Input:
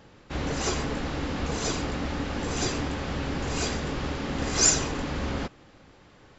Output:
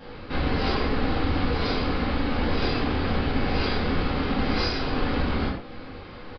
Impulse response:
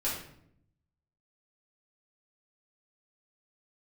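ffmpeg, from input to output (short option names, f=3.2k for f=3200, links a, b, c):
-filter_complex "[0:a]acompressor=threshold=-39dB:ratio=2.5[a];[1:a]atrim=start_sample=2205,atrim=end_sample=6174,asetrate=39249,aresample=44100[b];[a][b]afir=irnorm=-1:irlink=0,aresample=11025,aresample=44100,volume=6dB"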